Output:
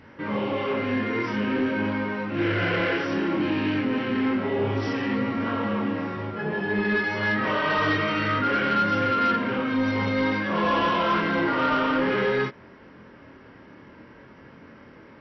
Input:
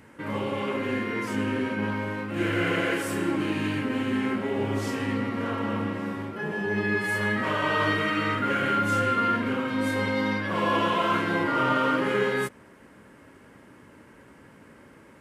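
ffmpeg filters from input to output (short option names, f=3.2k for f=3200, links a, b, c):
-af "flanger=delay=22.5:depth=5:speed=0.55,highshelf=f=5.6k:g=-4.5,aresample=16000,asoftclip=type=tanh:threshold=-23dB,aresample=44100,volume=6.5dB" -ar 22050 -c:a mp2 -b:a 48k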